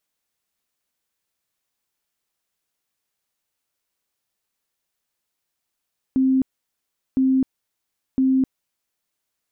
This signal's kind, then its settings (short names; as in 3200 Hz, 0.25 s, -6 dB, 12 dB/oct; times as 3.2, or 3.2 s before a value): tone bursts 263 Hz, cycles 68, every 1.01 s, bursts 3, -14.5 dBFS